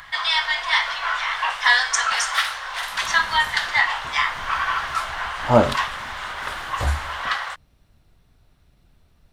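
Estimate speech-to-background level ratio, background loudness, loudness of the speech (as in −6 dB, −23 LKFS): −0.5 dB, −22.0 LKFS, −22.5 LKFS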